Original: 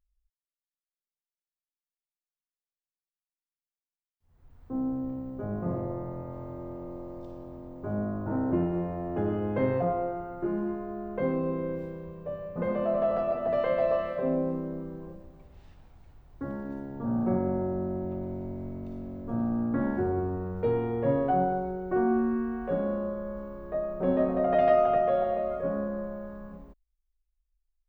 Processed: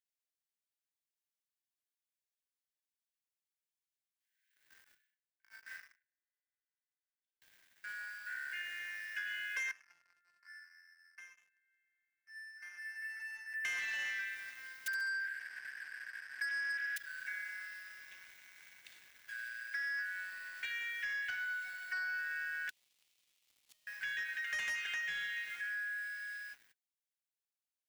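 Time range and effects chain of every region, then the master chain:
0:04.84–0:07.42: noise gate −32 dBFS, range −33 dB + frequency shifter −110 Hz + double-tracking delay 36 ms −3 dB
0:09.71–0:13.65: Butterworth low-pass 2,100 Hz + stiff-string resonator 160 Hz, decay 0.33 s, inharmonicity 0.03 + feedback echo with a high-pass in the loop 193 ms, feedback 43%, high-pass 600 Hz, level −10 dB
0:14.86–0:16.96: spectral envelope flattened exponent 0.1 + transistor ladder low-pass 1,700 Hz, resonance 80% + repeating echo 68 ms, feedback 47%, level −6 dB
0:22.69–0:23.87: converter with a step at zero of −35.5 dBFS + Chebyshev band-stop filter 720–2,700 Hz + gate with flip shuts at −30 dBFS, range −26 dB
whole clip: Chebyshev high-pass filter 1,500 Hz, order 10; leveller curve on the samples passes 3; downward compressor, threshold −42 dBFS; level +5.5 dB

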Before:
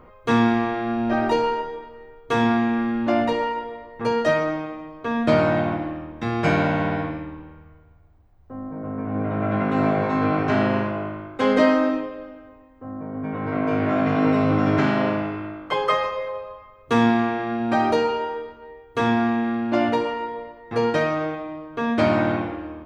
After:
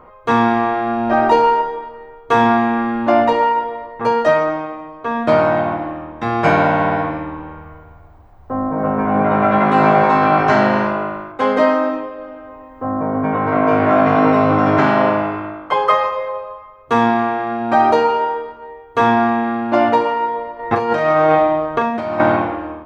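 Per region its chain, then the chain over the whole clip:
0:08.78–0:11.32: high-shelf EQ 3,000 Hz +8.5 dB + double-tracking delay 14 ms −4.5 dB
0:20.59–0:22.20: compressor whose output falls as the input rises −28 dBFS + double-tracking delay 40 ms −7 dB
whole clip: parametric band 910 Hz +10 dB 1.8 octaves; automatic gain control gain up to 11.5 dB; level −1 dB

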